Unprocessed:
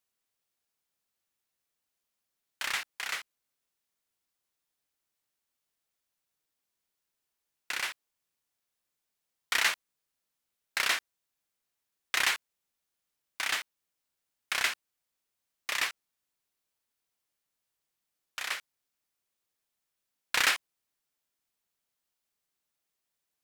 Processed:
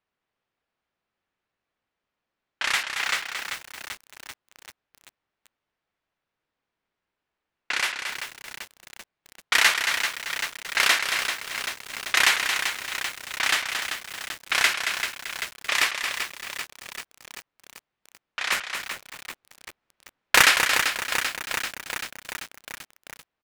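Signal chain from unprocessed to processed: 18.52–20.43 s: square wave that keeps the level; level-controlled noise filter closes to 2.3 kHz, open at -28 dBFS; delay 225 ms -7 dB; bit-crushed delay 389 ms, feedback 80%, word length 7-bit, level -7 dB; trim +8 dB

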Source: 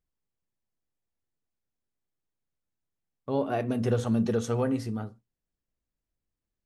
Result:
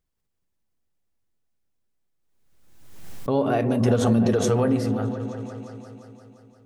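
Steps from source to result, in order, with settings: on a send: delay with an opening low-pass 174 ms, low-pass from 400 Hz, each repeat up 1 oct, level -6 dB; on the sum: swell ahead of each attack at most 44 dB/s; trim +5 dB

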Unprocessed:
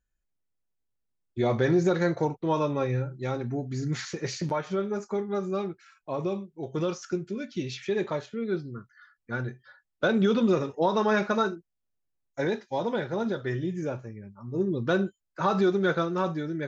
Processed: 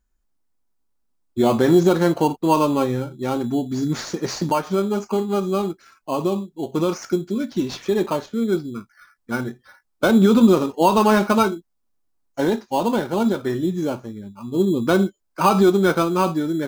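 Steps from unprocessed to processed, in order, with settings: graphic EQ 125/250/500/1000/2000 Hz -11/+5/-6/+4/-9 dB; in parallel at -6 dB: sample-and-hold 12×; on the sum: trim +7 dB

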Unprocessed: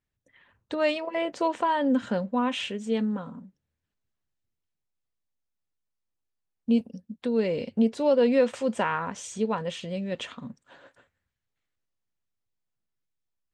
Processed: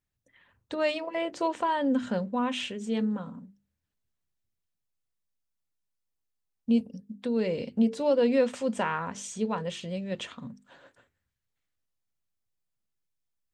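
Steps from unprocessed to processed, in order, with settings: tone controls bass +3 dB, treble +3 dB; hum notches 50/100/150/200/250/300/350/400/450 Hz; trim -2.5 dB

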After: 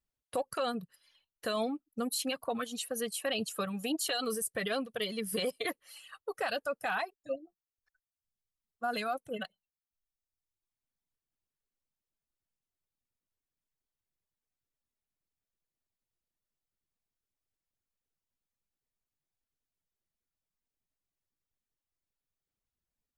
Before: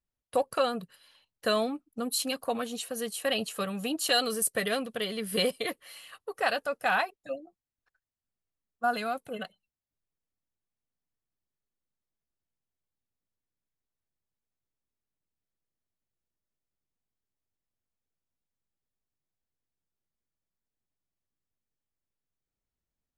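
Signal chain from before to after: reverb removal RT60 1.2 s; peak limiter -24 dBFS, peak gain reduction 10 dB

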